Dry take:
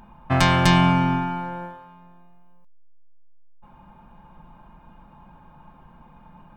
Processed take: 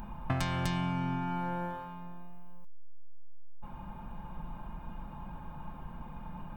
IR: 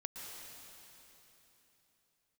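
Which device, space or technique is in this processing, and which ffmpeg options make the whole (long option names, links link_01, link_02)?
ASMR close-microphone chain: -af "lowshelf=frequency=140:gain=7,acompressor=threshold=-32dB:ratio=8,highshelf=frequency=8700:gain=8,volume=2dB"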